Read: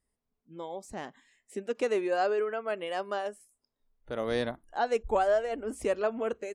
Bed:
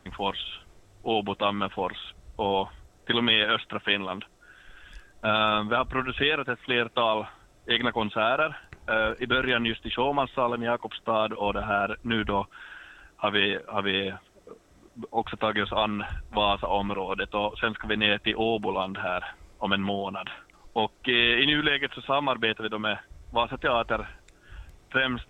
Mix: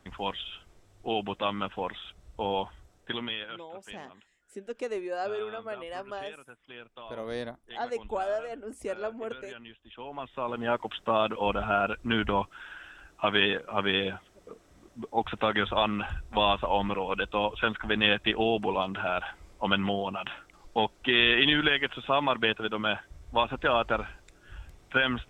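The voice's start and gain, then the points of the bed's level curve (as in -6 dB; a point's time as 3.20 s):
3.00 s, -5.0 dB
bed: 2.90 s -4 dB
3.71 s -21.5 dB
9.82 s -21.5 dB
10.74 s -0.5 dB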